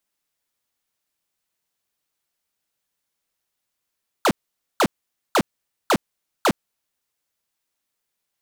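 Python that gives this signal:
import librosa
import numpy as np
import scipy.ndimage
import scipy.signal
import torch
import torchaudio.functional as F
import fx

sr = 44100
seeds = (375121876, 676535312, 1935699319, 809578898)

y = fx.laser_zaps(sr, level_db=-16.0, start_hz=1600.0, end_hz=150.0, length_s=0.06, wave='square', shots=5, gap_s=0.49)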